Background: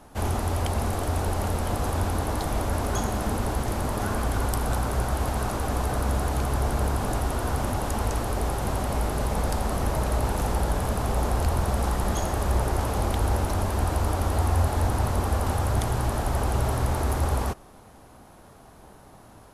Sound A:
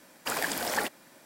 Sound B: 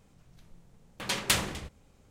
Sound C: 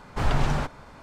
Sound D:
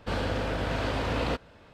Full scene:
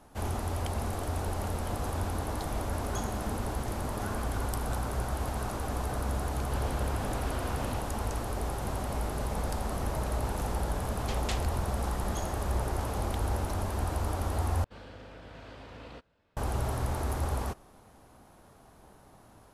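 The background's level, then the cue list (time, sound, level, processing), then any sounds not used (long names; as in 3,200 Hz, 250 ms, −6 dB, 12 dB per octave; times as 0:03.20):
background −6.5 dB
0:06.45: mix in D −4.5 dB + downward compressor, threshold −32 dBFS
0:09.99: mix in B −11.5 dB + low-pass filter 7,800 Hz 24 dB per octave
0:14.64: overwrite with D −18 dB
not used: A, C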